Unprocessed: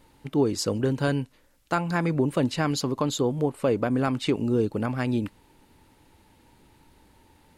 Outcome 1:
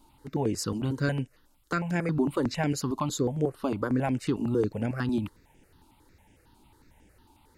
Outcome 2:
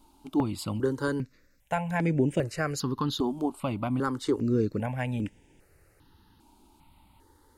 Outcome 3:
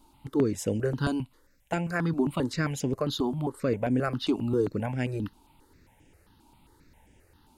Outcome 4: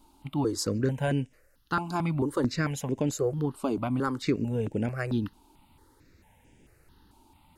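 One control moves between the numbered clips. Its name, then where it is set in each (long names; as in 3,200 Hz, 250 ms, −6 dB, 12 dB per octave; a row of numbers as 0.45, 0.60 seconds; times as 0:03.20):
step-sequenced phaser, speed: 11, 2.5, 7.5, 4.5 Hertz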